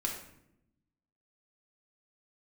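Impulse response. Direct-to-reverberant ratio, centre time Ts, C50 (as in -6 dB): -0.5 dB, 32 ms, 5.0 dB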